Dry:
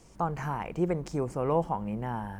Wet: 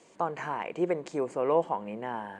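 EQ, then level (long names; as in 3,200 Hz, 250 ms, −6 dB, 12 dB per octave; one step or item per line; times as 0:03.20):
loudspeaker in its box 380–7,600 Hz, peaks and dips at 820 Hz −5 dB, 1,300 Hz −6 dB, 5,500 Hz −10 dB
parametric band 5,700 Hz −2 dB
+4.5 dB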